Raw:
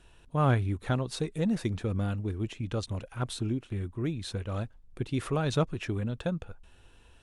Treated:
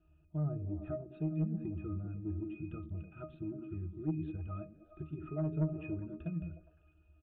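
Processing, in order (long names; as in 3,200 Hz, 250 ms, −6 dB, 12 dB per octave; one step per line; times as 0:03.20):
treble cut that deepens with the level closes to 590 Hz, closed at −23 dBFS
noise reduction from a noise print of the clip's start 7 dB
in parallel at +3 dB: downward compressor, threshold −39 dBFS, peak gain reduction 17 dB
on the sum: resonances in every octave D#, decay 0.22 s
soft clipping −27.5 dBFS, distortion −19 dB
on a send: echo through a band-pass that steps 102 ms, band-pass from 210 Hz, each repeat 0.7 octaves, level −4 dB
on the sum: downsampling to 8,000 Hz
level +2.5 dB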